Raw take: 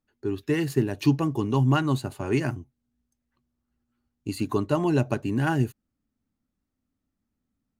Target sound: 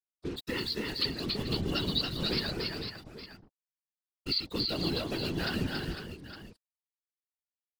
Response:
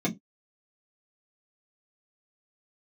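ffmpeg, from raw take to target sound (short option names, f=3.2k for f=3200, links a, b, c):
-filter_complex "[0:a]alimiter=limit=-15dB:level=0:latency=1:release=473,equalizer=f=125:t=o:w=1:g=-8,equalizer=f=500:t=o:w=1:g=4,equalizer=f=1k:t=o:w=1:g=-11,equalizer=f=2k:t=o:w=1:g=10,equalizer=f=4k:t=o:w=1:g=4,asplit=4[a][b][c][d];[b]asetrate=22050,aresample=44100,atempo=2,volume=-7dB[e];[c]asetrate=29433,aresample=44100,atempo=1.49831,volume=-18dB[f];[d]asetrate=33038,aresample=44100,atempo=1.33484,volume=-13dB[g];[a][e][f][g]amix=inputs=4:normalize=0,dynaudnorm=f=700:g=3:m=6.5dB,equalizer=f=450:w=0.37:g=-5,aresample=11025,asoftclip=type=hard:threshold=-19.5dB,aresample=44100,afftdn=nr=14:nf=-39,aexciter=amount=15.4:drive=2:freq=3.7k,acrusher=bits=5:mix=0:aa=0.5,acompressor=threshold=-25dB:ratio=3,aecho=1:1:280|305|438|503|862:0.668|0.224|0.141|0.355|0.211,afftfilt=real='hypot(re,im)*cos(2*PI*random(0))':imag='hypot(re,im)*sin(2*PI*random(1))':win_size=512:overlap=0.75"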